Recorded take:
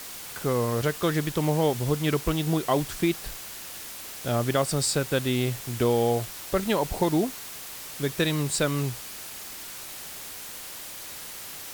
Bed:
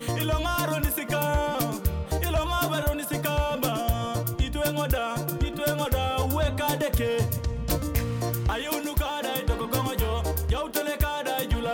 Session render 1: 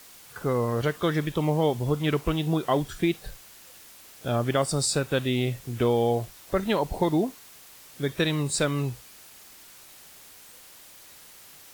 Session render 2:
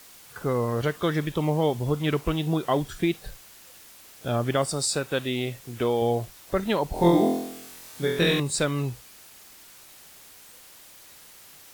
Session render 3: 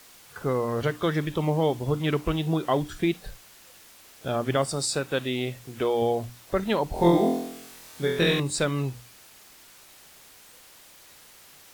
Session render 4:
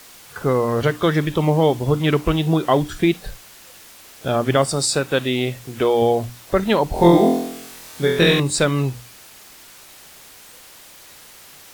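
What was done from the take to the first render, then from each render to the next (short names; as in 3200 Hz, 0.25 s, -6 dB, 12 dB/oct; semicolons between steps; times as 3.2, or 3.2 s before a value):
noise print and reduce 10 dB
4.7–6.02 low shelf 170 Hz -9 dB; 6.93–8.4 flutter echo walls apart 4 m, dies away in 0.74 s
high shelf 7100 Hz -4 dB; notches 60/120/180/240/300 Hz
gain +7.5 dB; limiter -1 dBFS, peak gain reduction 1 dB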